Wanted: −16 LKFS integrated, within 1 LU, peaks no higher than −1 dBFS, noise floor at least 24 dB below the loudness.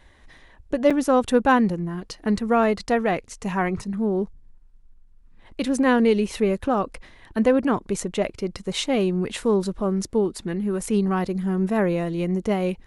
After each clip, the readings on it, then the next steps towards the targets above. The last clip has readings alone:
number of dropouts 1; longest dropout 5.5 ms; integrated loudness −23.0 LKFS; sample peak −6.5 dBFS; target loudness −16.0 LKFS
→ repair the gap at 0:00.90, 5.5 ms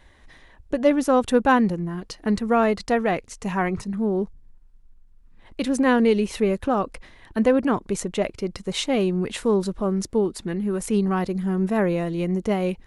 number of dropouts 0; integrated loudness −23.0 LKFS; sample peak −6.5 dBFS; target loudness −16.0 LKFS
→ level +7 dB
brickwall limiter −1 dBFS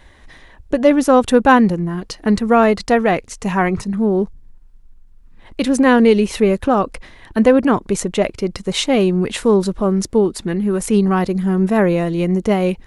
integrated loudness −16.0 LKFS; sample peak −1.0 dBFS; background noise floor −45 dBFS

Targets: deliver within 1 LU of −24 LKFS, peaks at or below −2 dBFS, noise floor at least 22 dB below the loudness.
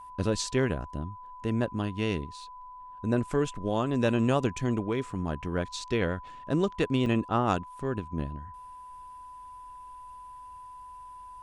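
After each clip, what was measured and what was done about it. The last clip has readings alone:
number of dropouts 1; longest dropout 2.0 ms; interfering tone 1,000 Hz; level of the tone −43 dBFS; integrated loudness −30.0 LKFS; sample peak −12.0 dBFS; target loudness −24.0 LKFS
→ repair the gap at 0:07.06, 2 ms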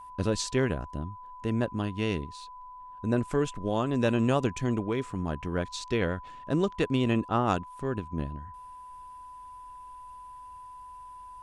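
number of dropouts 0; interfering tone 1,000 Hz; level of the tone −43 dBFS
→ notch filter 1,000 Hz, Q 30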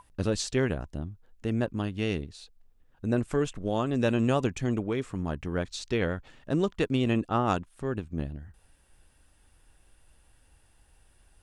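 interfering tone none found; integrated loudness −30.0 LKFS; sample peak −12.0 dBFS; target loudness −24.0 LKFS
→ level +6 dB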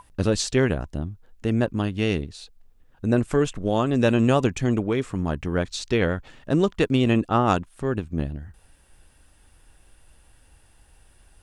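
integrated loudness −24.0 LKFS; sample peak −6.0 dBFS; background noise floor −57 dBFS

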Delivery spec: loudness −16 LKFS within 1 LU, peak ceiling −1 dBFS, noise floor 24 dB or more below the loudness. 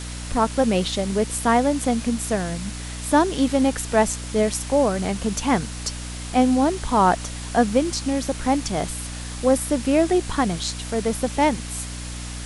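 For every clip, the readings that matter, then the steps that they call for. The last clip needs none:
mains hum 60 Hz; hum harmonics up to 300 Hz; level of the hum −31 dBFS; background noise floor −33 dBFS; target noise floor −46 dBFS; integrated loudness −22.0 LKFS; sample peak −5.0 dBFS; target loudness −16.0 LKFS
→ hum removal 60 Hz, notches 5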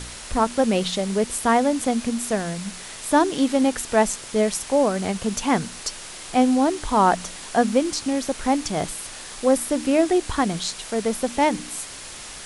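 mains hum none found; background noise floor −38 dBFS; target noise floor −47 dBFS
→ broadband denoise 9 dB, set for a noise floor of −38 dBFS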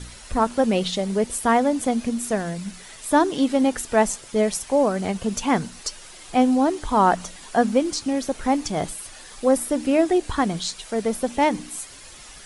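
background noise floor −43 dBFS; target noise floor −47 dBFS
→ broadband denoise 6 dB, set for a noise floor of −43 dBFS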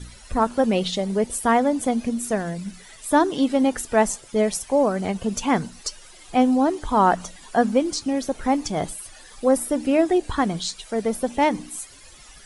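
background noise floor −46 dBFS; target noise floor −47 dBFS
→ broadband denoise 6 dB, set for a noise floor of −46 dBFS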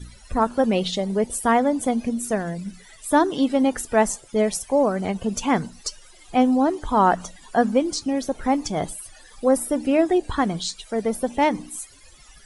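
background noise floor −49 dBFS; integrated loudness −22.5 LKFS; sample peak −6.0 dBFS; target loudness −16.0 LKFS
→ level +6.5 dB
brickwall limiter −1 dBFS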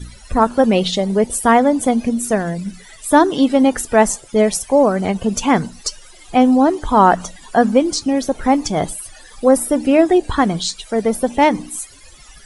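integrated loudness −16.0 LKFS; sample peak −1.0 dBFS; background noise floor −42 dBFS

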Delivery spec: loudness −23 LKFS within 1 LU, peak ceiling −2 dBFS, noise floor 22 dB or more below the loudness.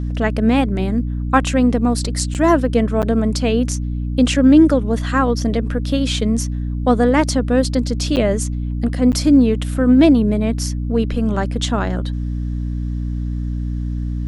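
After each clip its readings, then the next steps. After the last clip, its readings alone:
number of dropouts 4; longest dropout 8.3 ms; mains hum 60 Hz; hum harmonics up to 300 Hz; level of the hum −20 dBFS; integrated loudness −17.5 LKFS; sample peak −1.5 dBFS; target loudness −23.0 LKFS
→ repair the gap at 0:02.34/0:03.02/0:08.16/0:09.12, 8.3 ms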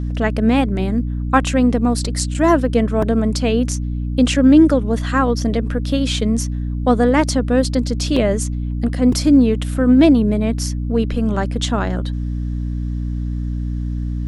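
number of dropouts 0; mains hum 60 Hz; hum harmonics up to 300 Hz; level of the hum −20 dBFS
→ hum removal 60 Hz, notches 5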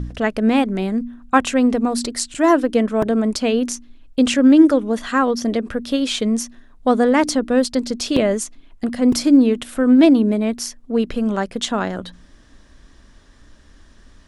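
mains hum none found; integrated loudness −18.0 LKFS; sample peak −2.0 dBFS; target loudness −23.0 LKFS
→ level −5 dB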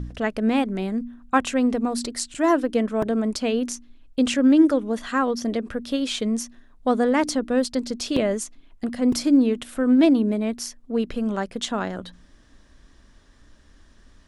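integrated loudness −23.0 LKFS; sample peak −7.0 dBFS; background noise floor −54 dBFS

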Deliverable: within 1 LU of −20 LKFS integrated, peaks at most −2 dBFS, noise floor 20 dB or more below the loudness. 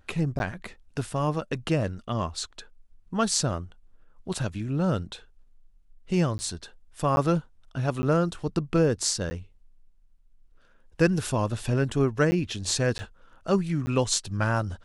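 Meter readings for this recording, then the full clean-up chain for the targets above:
number of dropouts 8; longest dropout 10 ms; integrated loudness −27.0 LKFS; sample peak −7.5 dBFS; target loudness −20.0 LKFS
→ repair the gap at 0:00.39/0:06.38/0:07.16/0:08.02/0:09.30/0:12.31/0:12.98/0:13.86, 10 ms
level +7 dB
brickwall limiter −2 dBFS

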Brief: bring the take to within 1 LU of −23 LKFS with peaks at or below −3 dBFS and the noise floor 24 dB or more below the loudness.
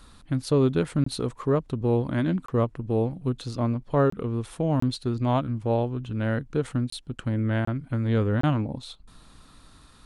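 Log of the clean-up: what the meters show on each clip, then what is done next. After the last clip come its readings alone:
number of dropouts 7; longest dropout 24 ms; integrated loudness −26.5 LKFS; sample peak −11.5 dBFS; target loudness −23.0 LKFS
→ repair the gap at 0:01.04/0:02.46/0:04.10/0:04.80/0:06.90/0:07.65/0:08.41, 24 ms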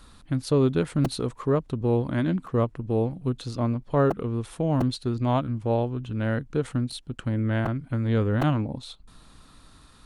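number of dropouts 0; integrated loudness −26.5 LKFS; sample peak −11.5 dBFS; target loudness −23.0 LKFS
→ level +3.5 dB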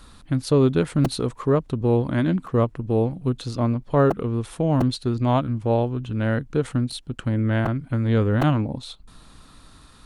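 integrated loudness −23.0 LKFS; sample peak −8.0 dBFS; background noise floor −50 dBFS

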